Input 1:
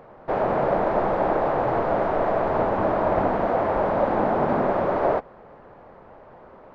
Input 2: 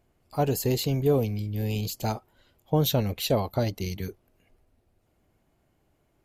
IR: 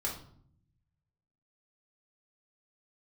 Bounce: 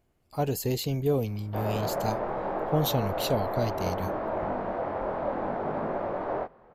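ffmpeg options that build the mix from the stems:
-filter_complex "[0:a]highshelf=f=9k:g=-9.5,flanger=delay=18.5:depth=5.9:speed=0.65,adelay=1250,volume=-6dB[a];[1:a]volume=-3dB[b];[a][b]amix=inputs=2:normalize=0"

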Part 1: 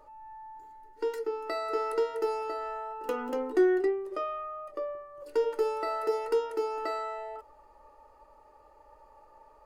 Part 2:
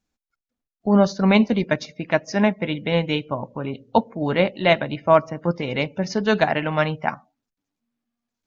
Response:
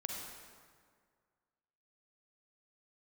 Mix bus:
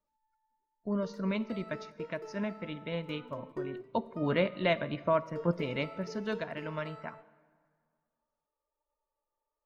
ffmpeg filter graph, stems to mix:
-filter_complex "[0:a]flanger=delay=2.8:depth=7.4:regen=64:speed=0.79:shape=triangular,volume=-11dB[a];[1:a]alimiter=limit=-9.5dB:level=0:latency=1:release=329,volume=-7.5dB,afade=t=in:st=3.72:d=0.34:silence=0.421697,afade=t=out:st=5.45:d=0.62:silence=0.446684,asplit=3[b][c][d];[c]volume=-14.5dB[e];[d]apad=whole_len=425635[f];[a][f]sidechaingate=range=-16dB:threshold=-51dB:ratio=16:detection=peak[g];[2:a]atrim=start_sample=2205[h];[e][h]afir=irnorm=-1:irlink=0[i];[g][b][i]amix=inputs=3:normalize=0,asuperstop=centerf=790:order=4:qfactor=5.2,highshelf=f=5.5k:g=-6"

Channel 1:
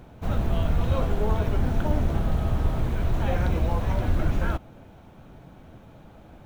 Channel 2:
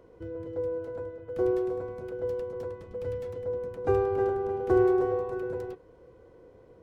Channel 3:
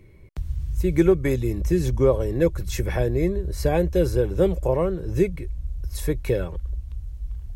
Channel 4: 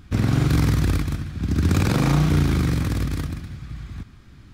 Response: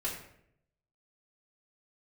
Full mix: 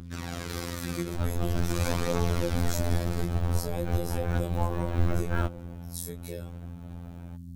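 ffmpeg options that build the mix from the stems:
-filter_complex "[0:a]adelay=900,volume=2.5dB[a];[1:a]volume=-9.5dB[b];[2:a]flanger=delay=18:depth=2.9:speed=1.2,aexciter=amount=4.9:drive=3.8:freq=3.6k,volume=-9dB,asplit=2[c][d];[3:a]bass=f=250:g=-13,treble=f=4k:g=4,aphaser=in_gain=1:out_gain=1:delay=4.7:decay=0.49:speed=0.46:type=triangular,volume=-6dB[e];[d]apad=whole_len=324397[f];[a][f]sidechaincompress=threshold=-37dB:ratio=8:attack=31:release=137[g];[g][b][c][e]amix=inputs=4:normalize=0,aeval=exprs='val(0)+0.02*(sin(2*PI*60*n/s)+sin(2*PI*2*60*n/s)/2+sin(2*PI*3*60*n/s)/3+sin(2*PI*4*60*n/s)/4+sin(2*PI*5*60*n/s)/5)':c=same,afftfilt=real='hypot(re,im)*cos(PI*b)':imag='0':win_size=2048:overlap=0.75"

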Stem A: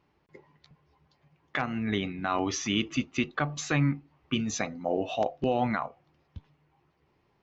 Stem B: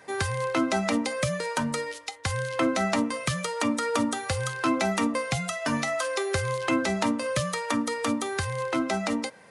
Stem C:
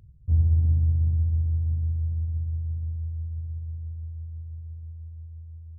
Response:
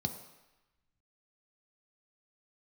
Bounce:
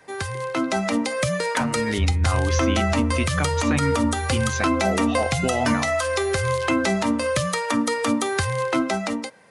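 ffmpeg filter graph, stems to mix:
-filter_complex "[0:a]volume=3dB[a];[1:a]dynaudnorm=f=130:g=13:m=8dB,volume=-1dB[b];[2:a]lowshelf=f=75:g=9.5,adelay=1700,volume=-5dB[c];[a][b][c]amix=inputs=3:normalize=0,alimiter=limit=-10.5dB:level=0:latency=1:release=128"

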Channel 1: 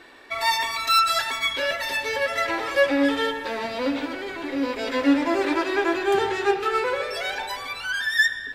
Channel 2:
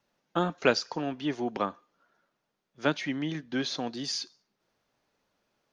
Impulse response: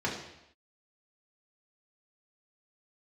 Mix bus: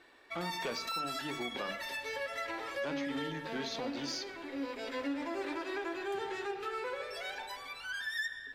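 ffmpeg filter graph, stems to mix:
-filter_complex "[0:a]volume=-12.5dB[a];[1:a]asoftclip=type=tanh:threshold=-22dB,volume=-5.5dB,asplit=2[b][c];[c]volume=-19.5dB[d];[2:a]atrim=start_sample=2205[e];[d][e]afir=irnorm=-1:irlink=0[f];[a][b][f]amix=inputs=3:normalize=0,bandreject=f=50:t=h:w=6,bandreject=f=100:t=h:w=6,bandreject=f=150:t=h:w=6,bandreject=f=200:t=h:w=6,bandreject=f=250:t=h:w=6,bandreject=f=300:t=h:w=6,alimiter=level_in=4.5dB:limit=-24dB:level=0:latency=1:release=99,volume=-4.5dB"

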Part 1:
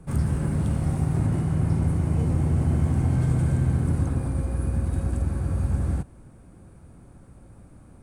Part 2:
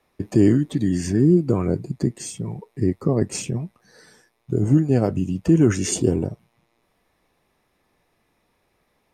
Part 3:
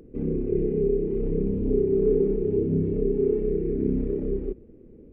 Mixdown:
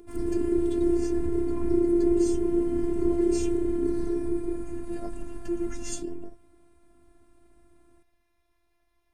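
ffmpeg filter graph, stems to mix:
-filter_complex "[0:a]volume=-5dB[a];[1:a]lowshelf=f=110:t=q:w=1.5:g=11.5,acompressor=threshold=-23dB:ratio=4,flanger=delay=8:depth=4.4:regen=38:speed=0.75:shape=triangular,volume=-1dB[b];[2:a]volume=1dB[c];[a][b][c]amix=inputs=3:normalize=0,afftfilt=real='hypot(re,im)*cos(PI*b)':imag='0':win_size=512:overlap=0.75,equalizer=f=200:w=1.8:g=3.5"

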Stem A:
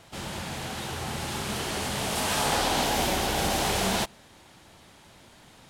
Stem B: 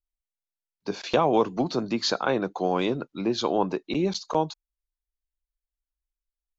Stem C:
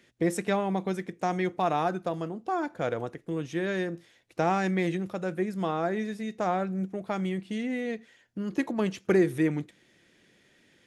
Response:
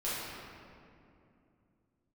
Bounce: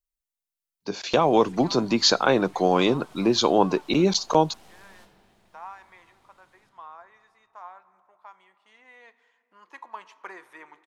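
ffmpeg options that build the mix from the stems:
-filter_complex "[0:a]acompressor=threshold=-36dB:ratio=12,aeval=exprs='(tanh(79.4*val(0)+0.65)-tanh(0.65))/79.4':c=same,adelay=1000,volume=-15.5dB,asplit=2[a][b];[b]volume=-4.5dB[c];[1:a]highshelf=f=5.6k:g=8.5,dynaudnorm=f=350:g=7:m=11.5dB,volume=-3dB[d];[2:a]highpass=f=1k:t=q:w=6.9,highshelf=f=8.3k:g=-10.5,adelay=1150,volume=-11.5dB,afade=t=in:st=8.53:d=0.66:silence=0.375837,asplit=2[e][f];[f]volume=-21dB[g];[3:a]atrim=start_sample=2205[h];[c][g]amix=inputs=2:normalize=0[i];[i][h]afir=irnorm=-1:irlink=0[j];[a][d][e][j]amix=inputs=4:normalize=0"

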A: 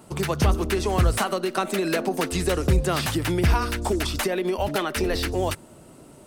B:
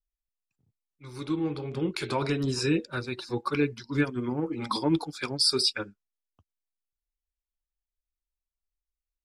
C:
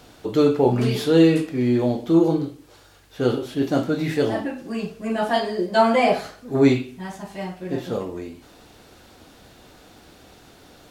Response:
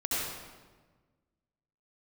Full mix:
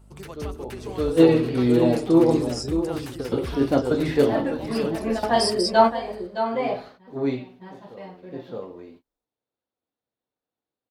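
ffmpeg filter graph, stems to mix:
-filter_complex "[0:a]aeval=exprs='val(0)+0.0158*(sin(2*PI*50*n/s)+sin(2*PI*2*50*n/s)/2+sin(2*PI*3*50*n/s)/3+sin(2*PI*4*50*n/s)/4+sin(2*PI*5*50*n/s)/5)':c=same,volume=-14dB,asplit=2[a][b];[b]volume=-13.5dB[c];[1:a]firequalizer=gain_entry='entry(100,0);entry(2600,-27);entry(5100,4)':delay=0.05:min_phase=1,volume=-4dB,asplit=2[d][e];[2:a]agate=range=-33dB:threshold=-39dB:ratio=16:detection=peak,equalizer=f=125:t=o:w=1:g=8,equalizer=f=250:t=o:w=1:g=7,equalizer=f=500:t=o:w=1:g=11,equalizer=f=1k:t=o:w=1:g=10,equalizer=f=2k:t=o:w=1:g=5,equalizer=f=4k:t=o:w=1:g=10,equalizer=f=8k:t=o:w=1:g=-8,volume=-11dB,asplit=2[f][g];[g]volume=-9.5dB[h];[e]apad=whole_len=480907[i];[f][i]sidechaingate=range=-20dB:threshold=-44dB:ratio=16:detection=peak[j];[c][h]amix=inputs=2:normalize=0,aecho=0:1:616:1[k];[a][d][j][k]amix=inputs=4:normalize=0"

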